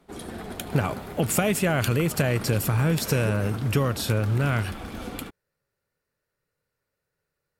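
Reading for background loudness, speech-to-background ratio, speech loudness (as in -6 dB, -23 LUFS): -36.5 LUFS, 11.5 dB, -25.0 LUFS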